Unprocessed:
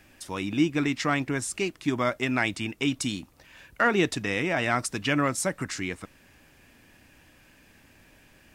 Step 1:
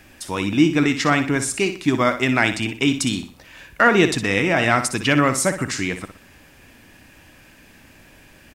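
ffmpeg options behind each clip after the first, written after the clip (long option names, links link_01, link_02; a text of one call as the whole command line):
ffmpeg -i in.wav -af "aecho=1:1:61|122|183|244:0.316|0.108|0.0366|0.0124,volume=7.5dB" out.wav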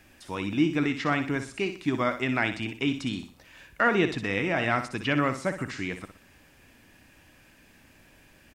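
ffmpeg -i in.wav -filter_complex "[0:a]acrossover=split=4100[link_01][link_02];[link_02]acompressor=threshold=-44dB:ratio=4:attack=1:release=60[link_03];[link_01][link_03]amix=inputs=2:normalize=0,volume=-8dB" out.wav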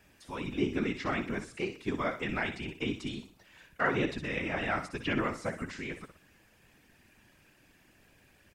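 ffmpeg -i in.wav -af "afftfilt=real='hypot(re,im)*cos(2*PI*random(0))':imag='hypot(re,im)*sin(2*PI*random(1))':win_size=512:overlap=0.75" out.wav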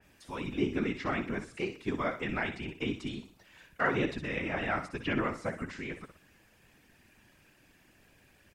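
ffmpeg -i in.wav -af "adynamicequalizer=threshold=0.00316:dfrequency=3100:dqfactor=0.7:tfrequency=3100:tqfactor=0.7:attack=5:release=100:ratio=0.375:range=2.5:mode=cutabove:tftype=highshelf" out.wav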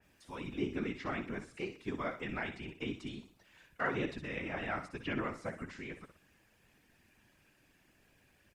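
ffmpeg -i in.wav -af "volume=-5.5dB" -ar 48000 -c:a libopus -b:a 64k out.opus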